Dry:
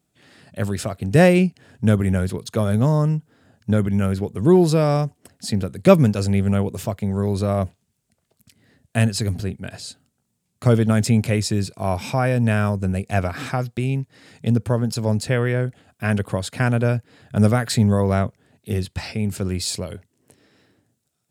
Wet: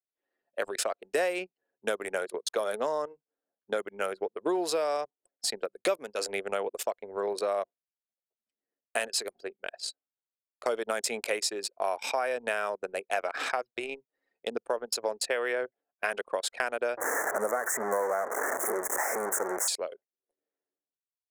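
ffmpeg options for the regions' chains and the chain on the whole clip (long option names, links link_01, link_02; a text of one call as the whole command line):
ffmpeg -i in.wav -filter_complex "[0:a]asettb=1/sr,asplit=3[link_01][link_02][link_03];[link_01]atrim=end=16.974[link_04];[link_02]atrim=start=16.97:end=19.68,asetpts=PTS-STARTPTS,afade=type=in:duration=0.004:curve=qsin,afade=type=out:start_time=2.706:duration=0.004:curve=qsin,aeval=exprs='val(0)+0.5*0.126*sgn(val(0))':channel_layout=same,asuperstop=centerf=3500:order=12:qfactor=0.85,adynamicequalizer=threshold=0.0158:dfrequency=2600:dqfactor=0.7:tfrequency=2600:tqfactor=0.7:attack=5:release=100:ratio=0.375:range=2:mode=cutabove:tftype=highshelf[link_05];[link_03]atrim=start=19.676[link_06];[link_04][link_05]acrossfade=duration=0.004:curve1=hsin:curve2=qsin[link_07];[link_07][link_06]acrossfade=duration=0.004:curve1=qsin:curve2=hsin,highpass=frequency=450:width=0.5412,highpass=frequency=450:width=1.3066,anlmdn=10,acompressor=threshold=-28dB:ratio=6,volume=2dB" out.wav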